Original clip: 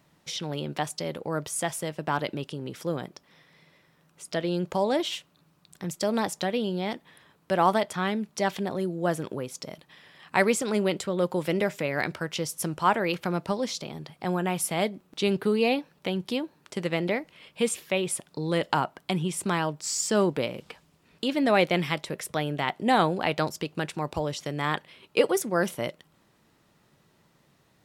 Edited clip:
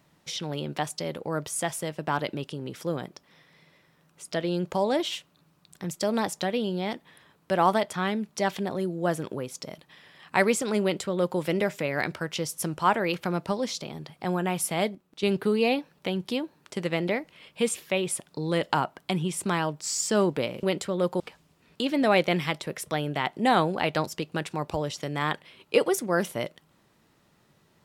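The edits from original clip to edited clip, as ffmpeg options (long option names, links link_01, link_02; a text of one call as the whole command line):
ffmpeg -i in.wav -filter_complex "[0:a]asplit=5[link_01][link_02][link_03][link_04][link_05];[link_01]atrim=end=14.952[link_06];[link_02]atrim=start=14.948:end=15.232,asetpts=PTS-STARTPTS,volume=-7.5dB[link_07];[link_03]atrim=start=15.228:end=20.632[link_08];[link_04]atrim=start=10.818:end=11.392[link_09];[link_05]atrim=start=20.628[link_10];[link_06][link_07]acrossfade=duration=0.004:curve1=hsin:curve2=hsin[link_11];[link_11][link_08]acrossfade=duration=0.004:curve1=hsin:curve2=hsin[link_12];[link_12][link_09]acrossfade=duration=0.004:curve1=hsin:curve2=hsin[link_13];[link_13][link_10]acrossfade=duration=0.004:curve1=hsin:curve2=hsin" out.wav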